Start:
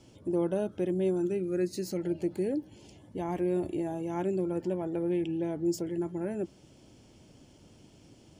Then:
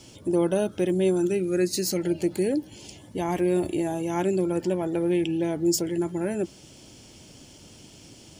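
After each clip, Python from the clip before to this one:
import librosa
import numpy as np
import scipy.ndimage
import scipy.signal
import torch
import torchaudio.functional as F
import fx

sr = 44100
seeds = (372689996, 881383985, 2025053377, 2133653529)

y = fx.high_shelf(x, sr, hz=2100.0, db=10.5)
y = y * 10.0 ** (5.5 / 20.0)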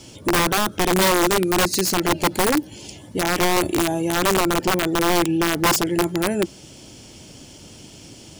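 y = (np.mod(10.0 ** (18.5 / 20.0) * x + 1.0, 2.0) - 1.0) / 10.0 ** (18.5 / 20.0)
y = y * 10.0 ** (6.0 / 20.0)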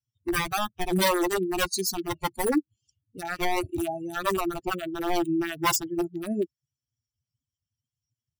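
y = fx.bin_expand(x, sr, power=3.0)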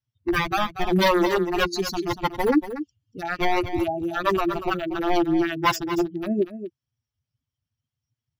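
y = scipy.signal.lfilter(np.full(5, 1.0 / 5), 1.0, x)
y = y + 10.0 ** (-11.5 / 20.0) * np.pad(y, (int(237 * sr / 1000.0), 0))[:len(y)]
y = y * 10.0 ** (4.5 / 20.0)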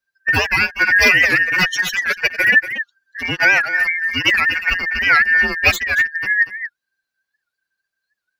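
y = fx.band_shuffle(x, sr, order='2143')
y = fx.record_warp(y, sr, rpm=78.0, depth_cents=160.0)
y = y * 10.0 ** (6.5 / 20.0)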